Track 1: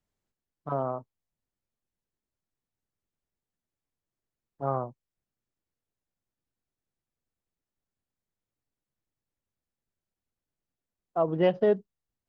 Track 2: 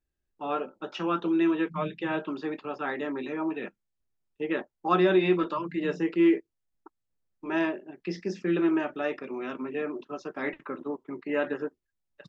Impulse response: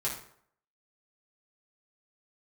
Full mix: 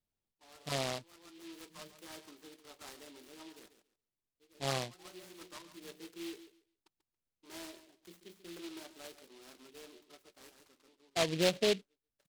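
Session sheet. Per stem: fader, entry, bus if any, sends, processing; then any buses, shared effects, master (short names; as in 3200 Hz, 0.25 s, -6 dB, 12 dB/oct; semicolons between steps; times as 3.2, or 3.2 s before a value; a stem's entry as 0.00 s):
-2.0 dB, 0.00 s, no send, no echo send, vocal rider
-17.0 dB, 0.00 s, no send, echo send -12.5 dB, low shelf 420 Hz -10 dB; auto duck -19 dB, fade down 1.05 s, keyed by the first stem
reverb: off
echo: feedback echo 0.139 s, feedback 19%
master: noise-modulated delay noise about 3100 Hz, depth 0.16 ms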